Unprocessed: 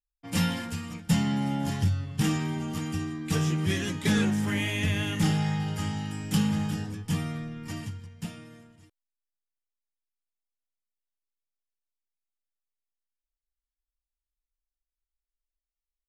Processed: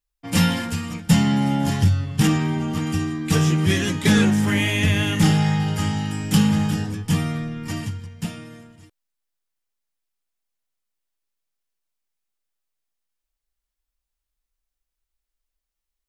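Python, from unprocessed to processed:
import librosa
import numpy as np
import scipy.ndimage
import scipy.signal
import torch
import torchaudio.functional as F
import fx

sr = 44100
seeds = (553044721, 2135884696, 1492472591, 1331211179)

y = fx.high_shelf(x, sr, hz=4900.0, db=-7.5, at=(2.27, 2.87))
y = y * 10.0 ** (8.0 / 20.0)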